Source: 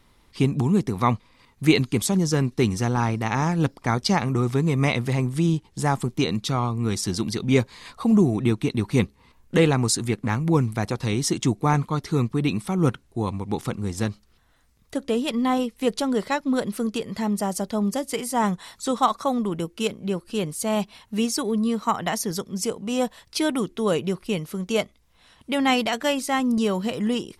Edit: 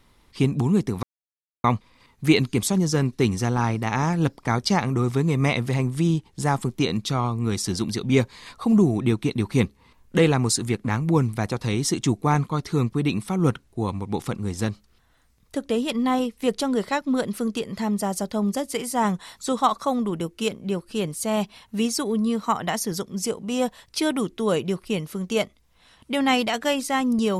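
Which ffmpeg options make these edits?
-filter_complex "[0:a]asplit=2[s0][s1];[s0]atrim=end=1.03,asetpts=PTS-STARTPTS,afade=t=out:st=1.026:d=0.004:c=hsin,apad=pad_dur=0.61[s2];[s1]atrim=start=1.03,asetpts=PTS-STARTPTS,afade=t=in:d=0.004:c=hsin[s3];[s2][s3]concat=n=2:v=0:a=1"

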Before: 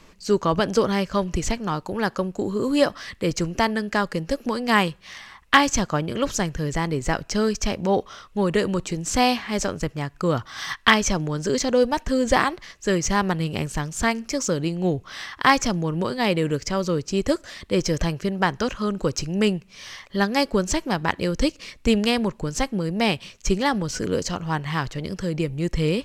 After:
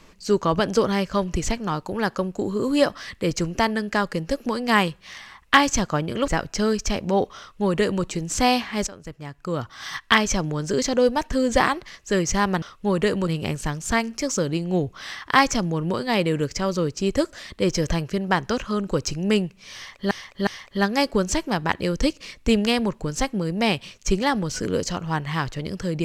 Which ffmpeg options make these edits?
-filter_complex "[0:a]asplit=7[s0][s1][s2][s3][s4][s5][s6];[s0]atrim=end=6.282[s7];[s1]atrim=start=7.038:end=9.63,asetpts=PTS-STARTPTS,afade=t=out:st=2.588:d=0.004:c=hsin:silence=0.149624[s8];[s2]atrim=start=9.63:end=13.382,asetpts=PTS-STARTPTS,afade=t=in:d=2:c=qsin:silence=0.149624[s9];[s3]atrim=start=8.138:end=8.792[s10];[s4]atrim=start=13.378:end=20.222[s11];[s5]atrim=start=19.858:end=20.222[s12];[s6]atrim=start=19.858[s13];[s8][s9]concat=n=2:v=0:a=1[s14];[s7][s14]acrossfade=d=0.004:c1=hsin:c2=hsin[s15];[s15][s10]acrossfade=d=0.004:c1=hsin:c2=hsin[s16];[s16][s11]acrossfade=d=0.004:c1=hsin:c2=hsin[s17];[s17][s12]acrossfade=d=0.004:c1=hsin:c2=hsin[s18];[s18][s13]acrossfade=d=0.004:c1=hsin:c2=hsin"

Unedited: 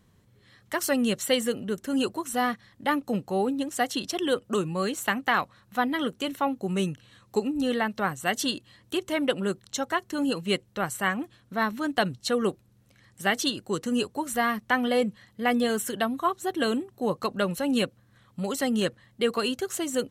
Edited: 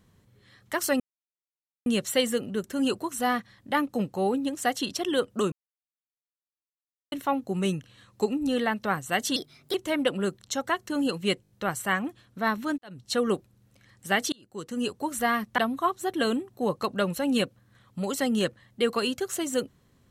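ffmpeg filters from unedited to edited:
-filter_complex "[0:a]asplit=13[s0][s1][s2][s3][s4][s5][s6][s7][s8][s9][s10][s11][s12];[s0]atrim=end=1,asetpts=PTS-STARTPTS,afade=t=out:st=0.996:d=0.004:c=hsin,apad=pad_dur=0.86[s13];[s1]atrim=start=1:end=4.66,asetpts=PTS-STARTPTS,afade=t=in:d=0.004:c=hsin,afade=t=out:st=3.656:d=0.004:c=hsin[s14];[s2]atrim=start=4.66:end=6.26,asetpts=PTS-STARTPTS,volume=0[s15];[s3]atrim=start=6.26:end=8.504,asetpts=PTS-STARTPTS,afade=t=in:d=0.004:c=hsin[s16];[s4]atrim=start=8.5:end=8.97,asetpts=PTS-STARTPTS,asetrate=54243,aresample=44100,atrim=end_sample=16851,asetpts=PTS-STARTPTS[s17];[s5]atrim=start=8.966:end=10.672[s18];[s6]atrim=start=10.648:end=10.672[s19];[s7]atrim=start=10.648:end=10.672[s20];[s8]atrim=start=10.648:end=10.672[s21];[s9]atrim=start=10.648:end=11.93,asetpts=PTS-STARTPTS,afade=t=out:st=1.278:d=0.004:c=hsin[s22];[s10]atrim=start=11.93:end=13.47,asetpts=PTS-STARTPTS,afade=t=in:d=0.3:c=qua,afade=t=out:st=1.536:d=0.004:c=hsin[s23];[s11]atrim=start=13.47:end=14.732,asetpts=PTS-STARTPTS,afade=t=in:d=0.72[s24];[s12]atrim=start=15.988[s25];[s13][s14][s15][s16]concat=n=4:v=0:a=1[s26];[s26][s17]acrossfade=d=0.004:c1=hsin:c2=hsin[s27];[s27][s18]acrossfade=d=0.004:c1=hsin:c2=hsin[s28];[s28][s19]acrossfade=d=0.004:c1=hsin:c2=hsin[s29];[s29][s20]acrossfade=d=0.004:c1=hsin:c2=hsin[s30];[s30][s21]acrossfade=d=0.004:c1=hsin:c2=hsin[s31];[s22][s23][s24]concat=n=3:v=0:a=1[s32];[s31][s32]acrossfade=d=0.004:c1=hsin:c2=hsin[s33];[s33][s25]acrossfade=d=0.004:c1=hsin:c2=hsin"

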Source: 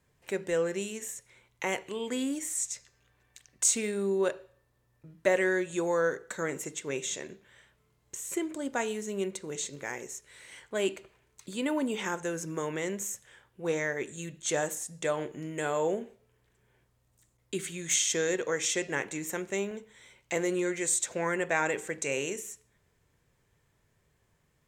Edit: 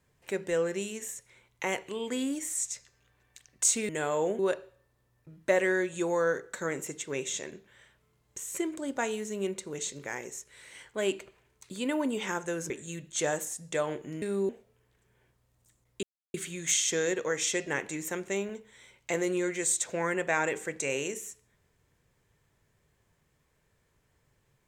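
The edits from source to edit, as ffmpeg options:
-filter_complex "[0:a]asplit=7[s0][s1][s2][s3][s4][s5][s6];[s0]atrim=end=3.892[s7];[s1]atrim=start=15.518:end=16.022[s8];[s2]atrim=start=4.158:end=12.472[s9];[s3]atrim=start=13.998:end=15.522[s10];[s4]atrim=start=3.888:end=4.162[s11];[s5]atrim=start=16.018:end=17.56,asetpts=PTS-STARTPTS,afade=t=out:st=1.538:d=0.004:c=hsin,apad=pad_dur=0.31[s12];[s6]atrim=start=17.56,asetpts=PTS-STARTPTS,afade=t=in:d=0.004:c=hsin[s13];[s7][s8]acrossfade=d=0.004:c1=hsin:c2=hsin[s14];[s14][s9]acrossfade=d=0.004:c1=hsin:c2=hsin[s15];[s15][s10]acrossfade=d=0.004:c1=hsin:c2=hsin[s16];[s16][s11]acrossfade=d=0.004:c1=hsin:c2=hsin[s17];[s12][s13]concat=n=2:v=0:a=1[s18];[s17][s18]acrossfade=d=0.004:c1=hsin:c2=hsin"

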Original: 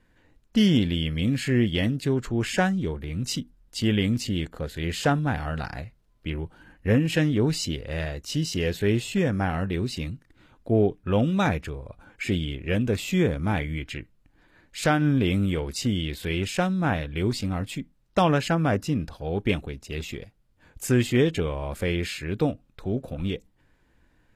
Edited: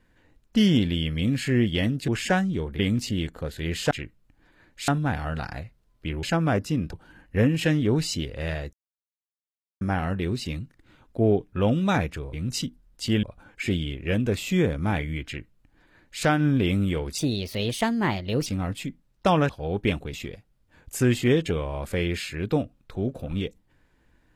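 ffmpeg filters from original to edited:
-filter_complex "[0:a]asplit=15[s0][s1][s2][s3][s4][s5][s6][s7][s8][s9][s10][s11][s12][s13][s14];[s0]atrim=end=2.082[s15];[s1]atrim=start=2.358:end=3.072[s16];[s2]atrim=start=3.968:end=5.092[s17];[s3]atrim=start=13.868:end=14.842[s18];[s4]atrim=start=5.088:end=6.442[s19];[s5]atrim=start=18.408:end=19.112[s20];[s6]atrim=start=6.438:end=8.24,asetpts=PTS-STARTPTS,afade=t=out:st=1.798:d=0.004:c=hsin[s21];[s7]atrim=start=8.24:end=9.32,asetpts=PTS-STARTPTS,volume=0[s22];[s8]atrim=start=9.32:end=11.842,asetpts=PTS-STARTPTS,afade=t=in:d=0.004:c=hsin[s23];[s9]atrim=start=3.068:end=3.972[s24];[s10]atrim=start=11.838:end=15.794[s25];[s11]atrim=start=15.79:end=17.38,asetpts=PTS-STARTPTS,asetrate=54684,aresample=44100[s26];[s12]atrim=start=17.376:end=18.412[s27];[s13]atrim=start=19.108:end=19.752[s28];[s14]atrim=start=20.018[s29];[s15][s16]acrossfade=d=0.004:c1=hsin:c2=hsin[s30];[s30][s17]acrossfade=d=0.004:c1=hsin:c2=hsin[s31];[s31][s18]acrossfade=d=0.004:c1=hsin:c2=hsin[s32];[s32][s19]acrossfade=d=0.004:c1=hsin:c2=hsin[s33];[s33][s20]acrossfade=d=0.004:c1=hsin:c2=hsin[s34];[s21][s22][s23]concat=n=3:v=0:a=1[s35];[s34][s35]acrossfade=d=0.004:c1=hsin:c2=hsin[s36];[s36][s24]acrossfade=d=0.004:c1=hsin:c2=hsin[s37];[s37][s25]acrossfade=d=0.004:c1=hsin:c2=hsin[s38];[s38][s26]acrossfade=d=0.004:c1=hsin:c2=hsin[s39];[s39][s27]acrossfade=d=0.004:c1=hsin:c2=hsin[s40];[s40][s28]acrossfade=d=0.004:c1=hsin:c2=hsin[s41];[s41][s29]acrossfade=d=0.004:c1=hsin:c2=hsin"

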